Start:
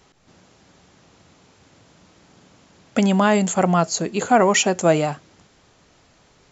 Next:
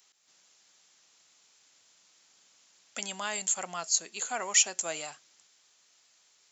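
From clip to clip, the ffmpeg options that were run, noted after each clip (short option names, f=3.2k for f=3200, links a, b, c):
-af "aderivative"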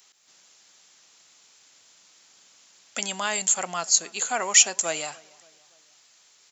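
-filter_complex "[0:a]asplit=2[a][b];[b]adelay=286,lowpass=f=2.5k:p=1,volume=-23.5dB,asplit=2[c][d];[d]adelay=286,lowpass=f=2.5k:p=1,volume=0.5,asplit=2[e][f];[f]adelay=286,lowpass=f=2.5k:p=1,volume=0.5[g];[a][c][e][g]amix=inputs=4:normalize=0,volume=7dB"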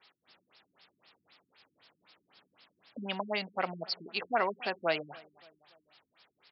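-af "afftfilt=real='re*lt(b*sr/1024,330*pow(5600/330,0.5+0.5*sin(2*PI*3.9*pts/sr)))':imag='im*lt(b*sr/1024,330*pow(5600/330,0.5+0.5*sin(2*PI*3.9*pts/sr)))':win_size=1024:overlap=0.75"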